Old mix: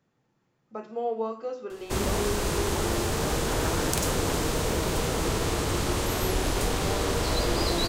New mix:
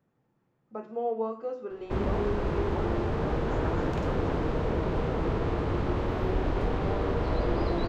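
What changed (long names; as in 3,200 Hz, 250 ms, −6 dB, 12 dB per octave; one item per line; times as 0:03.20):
background: add high-frequency loss of the air 200 metres
master: add parametric band 6,300 Hz −13 dB 2.6 octaves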